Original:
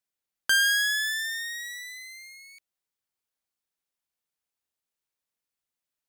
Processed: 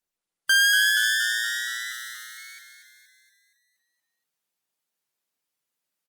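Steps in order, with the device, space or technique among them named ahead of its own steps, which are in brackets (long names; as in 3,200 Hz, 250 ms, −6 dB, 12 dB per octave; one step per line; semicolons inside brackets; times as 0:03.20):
0:01.92–0:02.38: first-order pre-emphasis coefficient 0.97
echo with shifted repeats 236 ms, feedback 55%, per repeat −47 Hz, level −7 dB
noise-suppressed video call (high-pass filter 120 Hz 24 dB per octave; gate on every frequency bin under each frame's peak −30 dB strong; automatic gain control gain up to 4 dB; Opus 32 kbit/s 48,000 Hz)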